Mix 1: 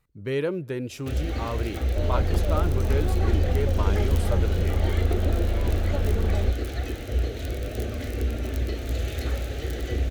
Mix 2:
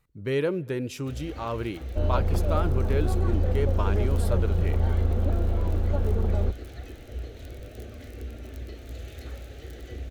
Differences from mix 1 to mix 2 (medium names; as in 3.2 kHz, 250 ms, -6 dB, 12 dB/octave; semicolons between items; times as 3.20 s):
speech: send +9.5 dB; first sound -11.0 dB